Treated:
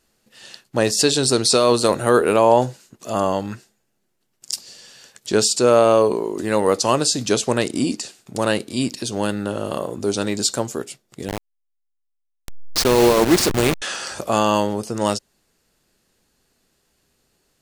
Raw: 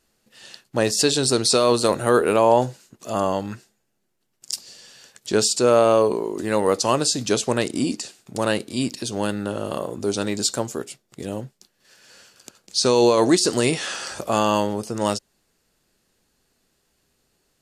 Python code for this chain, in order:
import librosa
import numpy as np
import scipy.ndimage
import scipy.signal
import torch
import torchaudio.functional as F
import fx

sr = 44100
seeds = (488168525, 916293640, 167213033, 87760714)

y = fx.delta_hold(x, sr, step_db=-17.0, at=(11.28, 13.82))
y = y * librosa.db_to_amplitude(2.0)